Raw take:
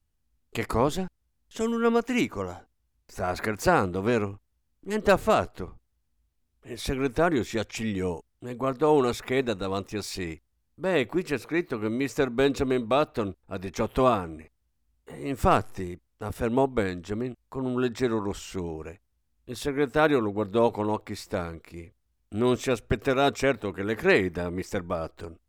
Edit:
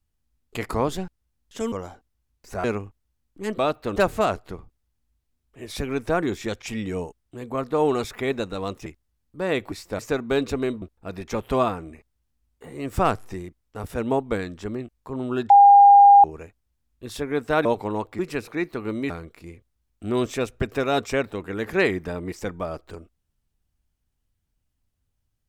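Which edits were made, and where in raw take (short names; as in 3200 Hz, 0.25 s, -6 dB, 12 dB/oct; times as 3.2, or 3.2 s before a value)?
1.72–2.37 cut
3.29–4.11 cut
9.95–10.3 cut
11.16–12.07 swap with 21.13–21.4
12.9–13.28 move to 5.05
17.96–18.7 bleep 806 Hz -7.5 dBFS
20.11–20.59 cut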